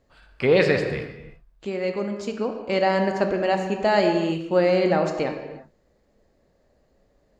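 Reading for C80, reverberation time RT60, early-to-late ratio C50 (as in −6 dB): 7.5 dB, non-exponential decay, 6.5 dB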